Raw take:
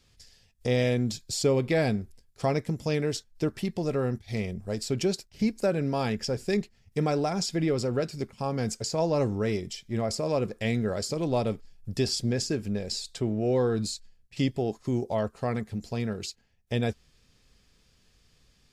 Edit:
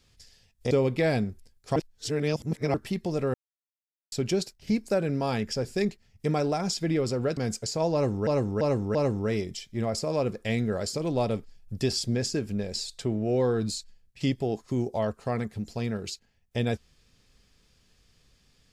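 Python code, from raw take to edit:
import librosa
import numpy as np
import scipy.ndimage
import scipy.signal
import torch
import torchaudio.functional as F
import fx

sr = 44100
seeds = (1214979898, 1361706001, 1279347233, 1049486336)

y = fx.edit(x, sr, fx.cut(start_s=0.71, length_s=0.72),
    fx.reverse_span(start_s=2.48, length_s=0.98),
    fx.silence(start_s=4.06, length_s=0.78),
    fx.cut(start_s=8.09, length_s=0.46),
    fx.repeat(start_s=9.11, length_s=0.34, count=4), tone=tone)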